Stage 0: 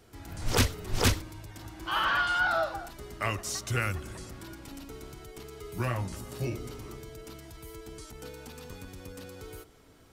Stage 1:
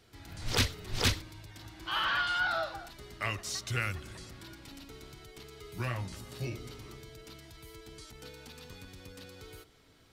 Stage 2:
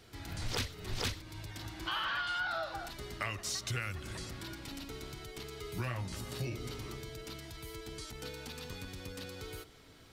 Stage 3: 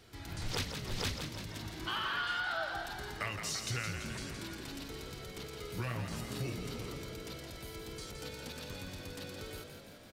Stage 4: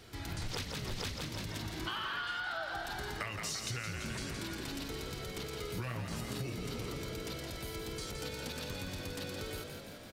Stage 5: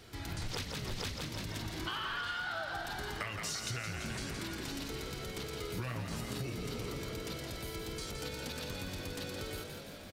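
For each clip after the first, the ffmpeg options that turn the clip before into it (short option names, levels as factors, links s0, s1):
-af "equalizer=f=125:t=o:w=1:g=3,equalizer=f=2000:t=o:w=1:g=4,equalizer=f=4000:t=o:w=1:g=8,volume=0.473"
-af "acompressor=threshold=0.0112:ratio=4,volume=1.68"
-filter_complex "[0:a]asplit=9[s0][s1][s2][s3][s4][s5][s6][s7][s8];[s1]adelay=168,afreqshift=52,volume=0.447[s9];[s2]adelay=336,afreqshift=104,volume=0.275[s10];[s3]adelay=504,afreqshift=156,volume=0.172[s11];[s4]adelay=672,afreqshift=208,volume=0.106[s12];[s5]adelay=840,afreqshift=260,volume=0.0661[s13];[s6]adelay=1008,afreqshift=312,volume=0.0407[s14];[s7]adelay=1176,afreqshift=364,volume=0.0254[s15];[s8]adelay=1344,afreqshift=416,volume=0.0157[s16];[s0][s9][s10][s11][s12][s13][s14][s15][s16]amix=inputs=9:normalize=0,volume=0.891"
-af "acompressor=threshold=0.01:ratio=5,volume=1.68"
-af "aecho=1:1:1194:0.188"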